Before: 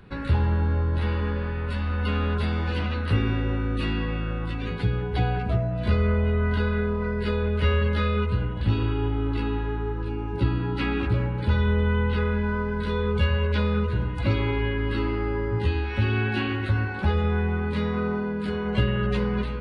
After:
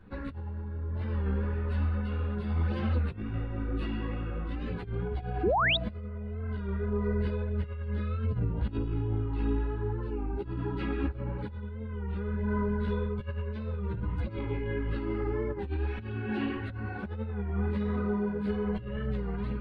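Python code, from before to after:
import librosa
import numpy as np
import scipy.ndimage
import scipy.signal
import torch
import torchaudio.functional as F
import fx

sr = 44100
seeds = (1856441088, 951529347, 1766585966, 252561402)

y = fx.high_shelf(x, sr, hz=2200.0, db=-12.0)
y = fx.over_compress(y, sr, threshold_db=-26.0, ratio=-0.5)
y = fx.chorus_voices(y, sr, voices=4, hz=1.3, base_ms=12, depth_ms=3.0, mix_pct=55)
y = fx.spec_paint(y, sr, seeds[0], shape='rise', start_s=5.43, length_s=0.34, low_hz=300.0, high_hz=4000.0, level_db=-22.0)
y = fx.record_warp(y, sr, rpm=33.33, depth_cents=100.0)
y = F.gain(torch.from_numpy(y), -3.5).numpy()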